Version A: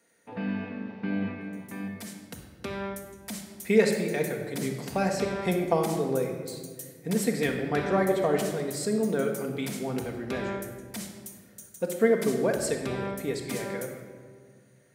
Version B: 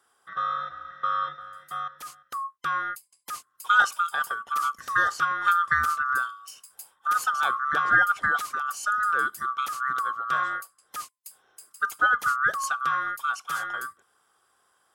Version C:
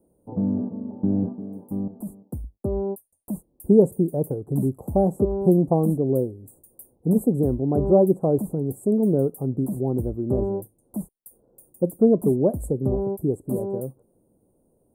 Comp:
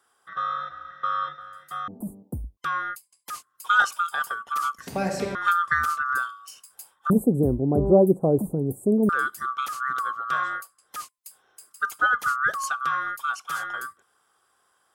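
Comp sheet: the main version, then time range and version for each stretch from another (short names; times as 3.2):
B
1.88–2.57 from C
4.87–5.35 from A
7.1–9.09 from C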